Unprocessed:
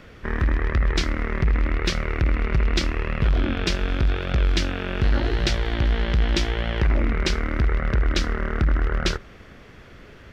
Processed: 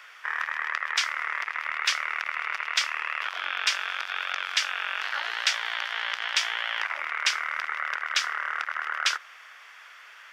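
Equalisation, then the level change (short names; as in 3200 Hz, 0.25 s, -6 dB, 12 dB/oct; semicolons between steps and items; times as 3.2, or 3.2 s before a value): HPF 1000 Hz 24 dB/oct; bell 4100 Hz -6.5 dB 0.23 oct; +4.0 dB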